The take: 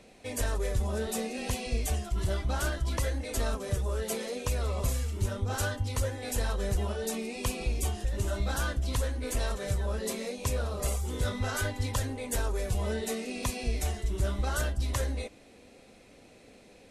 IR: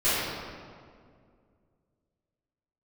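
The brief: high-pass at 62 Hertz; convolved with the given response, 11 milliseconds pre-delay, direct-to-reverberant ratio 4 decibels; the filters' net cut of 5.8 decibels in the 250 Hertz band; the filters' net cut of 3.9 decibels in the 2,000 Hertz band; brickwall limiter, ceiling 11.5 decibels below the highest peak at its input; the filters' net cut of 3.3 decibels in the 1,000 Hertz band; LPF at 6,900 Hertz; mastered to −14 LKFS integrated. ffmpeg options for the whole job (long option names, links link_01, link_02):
-filter_complex "[0:a]highpass=62,lowpass=6900,equalizer=frequency=250:width_type=o:gain=-7,equalizer=frequency=1000:width_type=o:gain=-3,equalizer=frequency=2000:width_type=o:gain=-4,alimiter=level_in=7dB:limit=-24dB:level=0:latency=1,volume=-7dB,asplit=2[link_01][link_02];[1:a]atrim=start_sample=2205,adelay=11[link_03];[link_02][link_03]afir=irnorm=-1:irlink=0,volume=-19.5dB[link_04];[link_01][link_04]amix=inputs=2:normalize=0,volume=24.5dB"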